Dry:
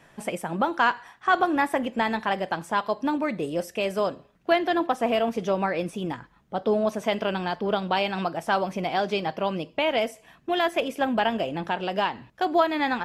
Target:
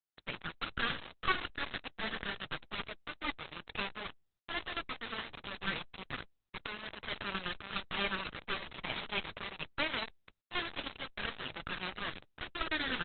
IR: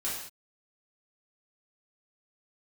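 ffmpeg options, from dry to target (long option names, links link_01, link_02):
-filter_complex "[0:a]aeval=exprs='(tanh(31.6*val(0)+0.8)-tanh(0.8))/31.6':channel_layout=same,acrossover=split=110|850[link_01][link_02][link_03];[link_02]acompressor=threshold=-46dB:ratio=5[link_04];[link_01][link_04][link_03]amix=inputs=3:normalize=0,lowshelf=frequency=68:gain=-7,afftfilt=real='re*(1-between(b*sr/4096,160,1100))':imag='im*(1-between(b*sr/4096,160,1100))':win_size=4096:overlap=0.75,aresample=11025,acrusher=bits=5:dc=4:mix=0:aa=0.000001,aresample=44100,volume=13dB" -ar 48000 -c:a libopus -b:a 8k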